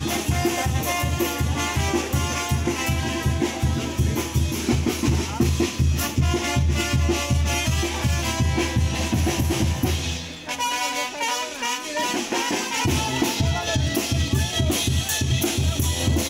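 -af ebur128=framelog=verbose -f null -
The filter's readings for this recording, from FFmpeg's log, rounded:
Integrated loudness:
  I:         -22.9 LUFS
  Threshold: -32.9 LUFS
Loudness range:
  LRA:         2.0 LU
  Threshold: -43.0 LUFS
  LRA low:   -24.1 LUFS
  LRA high:  -22.1 LUFS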